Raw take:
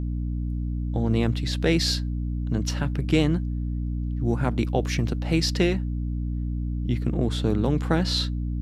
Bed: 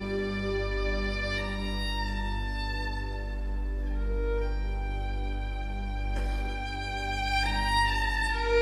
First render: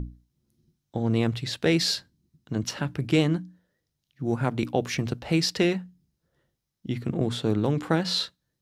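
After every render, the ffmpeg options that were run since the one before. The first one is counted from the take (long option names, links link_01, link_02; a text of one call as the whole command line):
ffmpeg -i in.wav -af "bandreject=frequency=60:width_type=h:width=6,bandreject=frequency=120:width_type=h:width=6,bandreject=frequency=180:width_type=h:width=6,bandreject=frequency=240:width_type=h:width=6,bandreject=frequency=300:width_type=h:width=6" out.wav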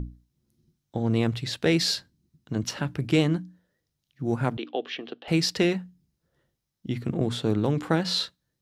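ffmpeg -i in.wav -filter_complex "[0:a]asettb=1/sr,asplit=3[link_01][link_02][link_03];[link_01]atrim=end=4.574[link_04];[link_02]atrim=start=4.57:end=5.28,asetpts=PTS-STARTPTS,afade=type=in:duration=0.004:curve=qsin,afade=type=out:start_time=0.706:duration=0.004:curve=qsin,highpass=frequency=320:width=0.5412,highpass=frequency=320:width=1.3066,equalizer=frequency=350:width_type=q:width=4:gain=-3,equalizer=frequency=570:width_type=q:width=4:gain=-6,equalizer=frequency=950:width_type=q:width=4:gain=-10,equalizer=frequency=1400:width_type=q:width=4:gain=-5,equalizer=frequency=2200:width_type=q:width=4:gain=-8,equalizer=frequency=3200:width_type=q:width=4:gain=7,lowpass=frequency=3500:width=0.5412,lowpass=frequency=3500:width=1.3066[link_05];[link_03]atrim=start=5.276[link_06];[link_04][link_05]acrossfade=duration=0.004:curve1=hsin:curve2=qsin[link_07];[link_07][link_06]acrossfade=duration=0.004:curve1=qsin:curve2=hsin" out.wav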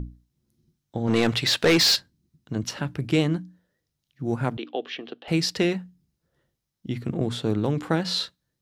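ffmpeg -i in.wav -filter_complex "[0:a]asplit=3[link_01][link_02][link_03];[link_01]afade=type=out:start_time=1.07:duration=0.02[link_04];[link_02]asplit=2[link_05][link_06];[link_06]highpass=frequency=720:poles=1,volume=21dB,asoftclip=type=tanh:threshold=-10dB[link_07];[link_05][link_07]amix=inputs=2:normalize=0,lowpass=frequency=5800:poles=1,volume=-6dB,afade=type=in:start_time=1.07:duration=0.02,afade=type=out:start_time=1.95:duration=0.02[link_08];[link_03]afade=type=in:start_time=1.95:duration=0.02[link_09];[link_04][link_08][link_09]amix=inputs=3:normalize=0" out.wav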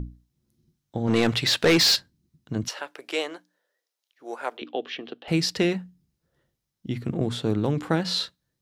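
ffmpeg -i in.wav -filter_complex "[0:a]asettb=1/sr,asplit=3[link_01][link_02][link_03];[link_01]atrim=end=2.684[link_04];[link_02]atrim=start=2.68:end=4.62,asetpts=PTS-STARTPTS,afade=type=in:duration=0.004:curve=qsin,afade=type=out:start_time=1.936:duration=0.004:curve=qsin,highpass=frequency=460:width=0.5412,highpass=frequency=460:width=1.3066[link_05];[link_03]atrim=start=4.616[link_06];[link_04][link_05]acrossfade=duration=0.004:curve1=hsin:curve2=qsin[link_07];[link_07][link_06]acrossfade=duration=0.004:curve1=qsin:curve2=hsin" out.wav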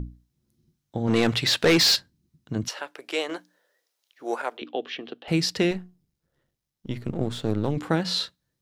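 ffmpeg -i in.wav -filter_complex "[0:a]asettb=1/sr,asplit=3[link_01][link_02][link_03];[link_01]atrim=end=3.294[link_04];[link_02]atrim=start=3.29:end=4.42,asetpts=PTS-STARTPTS,afade=type=in:duration=0.004:curve=qsin,afade=type=out:start_time=1.126:duration=0.004:curve=qsin,acontrast=77[link_05];[link_03]atrim=start=4.416[link_06];[link_04][link_05]acrossfade=duration=0.004:curve1=hsin:curve2=qsin[link_07];[link_07][link_06]acrossfade=duration=0.004:curve1=qsin:curve2=hsin,asettb=1/sr,asplit=3[link_08][link_09][link_10];[link_08]atrim=end=5.714[link_11];[link_09]atrim=start=5.71:end=7.77,asetpts=PTS-STARTPTS,afade=type=in:duration=0.004:curve=qsin,afade=type=out:start_time=2.056:duration=0.004:curve=qsin,aeval=exprs='if(lt(val(0),0),0.447*val(0),val(0))':channel_layout=same[link_12];[link_10]atrim=start=7.766[link_13];[link_11][link_12]acrossfade=duration=0.004:curve1=hsin:curve2=qsin[link_14];[link_14][link_13]acrossfade=duration=0.004:curve1=qsin:curve2=hsin" out.wav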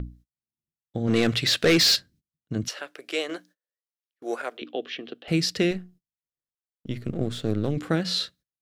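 ffmpeg -i in.wav -af "agate=range=-30dB:threshold=-51dB:ratio=16:detection=peak,equalizer=frequency=910:width=3.5:gain=-11.5" out.wav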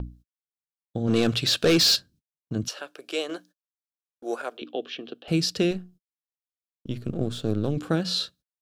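ffmpeg -i in.wav -af "agate=range=-19dB:threshold=-51dB:ratio=16:detection=peak,equalizer=frequency=2000:width_type=o:width=0.28:gain=-13" out.wav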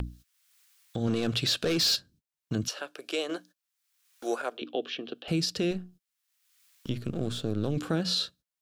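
ffmpeg -i in.wav -filter_complex "[0:a]acrossover=split=1200[link_01][link_02];[link_02]acompressor=mode=upward:threshold=-38dB:ratio=2.5[link_03];[link_01][link_03]amix=inputs=2:normalize=0,alimiter=limit=-18.5dB:level=0:latency=1:release=142" out.wav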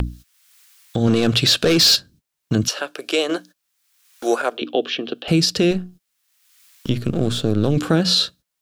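ffmpeg -i in.wav -af "volume=11.5dB" out.wav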